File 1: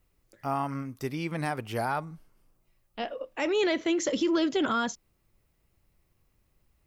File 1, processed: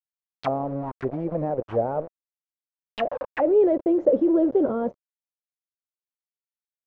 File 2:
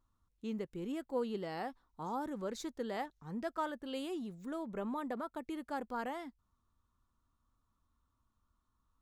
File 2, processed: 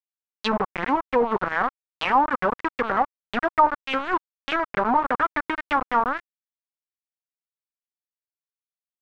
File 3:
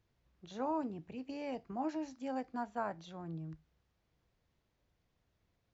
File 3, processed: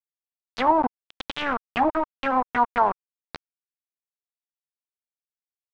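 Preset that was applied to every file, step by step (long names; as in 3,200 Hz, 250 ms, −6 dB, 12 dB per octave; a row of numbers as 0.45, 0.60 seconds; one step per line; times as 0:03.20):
bit reduction 6 bits
pitch vibrato 1.6 Hz 20 cents
envelope-controlled low-pass 540–4,500 Hz down, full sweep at −28.5 dBFS
loudness normalisation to −24 LKFS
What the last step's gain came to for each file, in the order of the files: +2.0, +11.5, +10.5 decibels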